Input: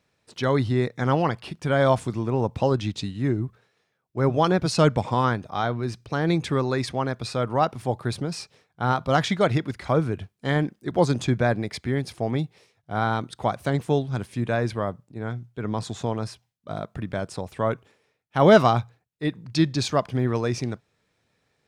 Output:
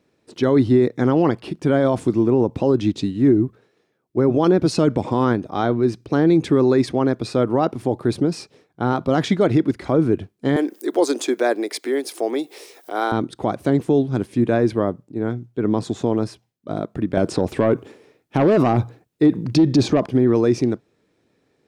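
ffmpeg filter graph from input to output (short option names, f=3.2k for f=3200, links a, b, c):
-filter_complex "[0:a]asettb=1/sr,asplit=3[a][b][c];[a]atrim=end=10.564[d];[b]atrim=start=10.56:end=13.12,asetpts=PTS-STARTPTS,afade=t=in:d=0.004:c=qsin,afade=t=out:st=2.556:d=0.004:c=qsin,highpass=f=320:w=0.5412,highpass=f=320:w=1.3066,aemphasis=mode=production:type=bsi,acompressor=mode=upward:threshold=-30dB:ratio=2.5:attack=3.2:release=140:knee=2.83:detection=peak[e];[c]atrim=start=13.116[f];[d][e]acrossfade=d=0.004:c1=hsin:c2=qsin[g];[g][f]acrossfade=d=0.004:c1=qsin:c2=hsin,asettb=1/sr,asplit=3[h][i][j];[h]atrim=end=17.174[k];[i]atrim=start=17.17:end=20.06,asetpts=PTS-STARTPTS,afade=t=in:d=0.004:c=qsin,afade=t=out:st=2.886:d=0.004:c=qsin,acrossover=split=1200|7700[l][m][n];[l]acompressor=threshold=-19dB:ratio=4[o];[m]acompressor=threshold=-38dB:ratio=4[p];[n]acompressor=threshold=-59dB:ratio=4[q];[o][p][q]amix=inputs=3:normalize=0,aeval=exprs='0.299*sin(PI/2*2*val(0)/0.299)':c=same[r];[j]atrim=start=20.056[s];[k][r]acrossfade=d=0.004:c1=hsin:c2=qsin[t];[t][s]acrossfade=d=0.004:c1=qsin:c2=hsin,equalizer=f=320:w=1:g=14.5,alimiter=limit=-7.5dB:level=0:latency=1:release=34"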